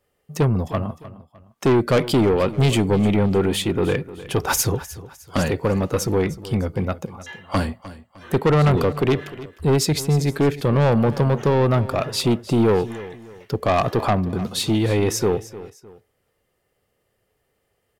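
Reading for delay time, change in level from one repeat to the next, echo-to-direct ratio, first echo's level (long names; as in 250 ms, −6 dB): 305 ms, −8.5 dB, −16.0 dB, −16.5 dB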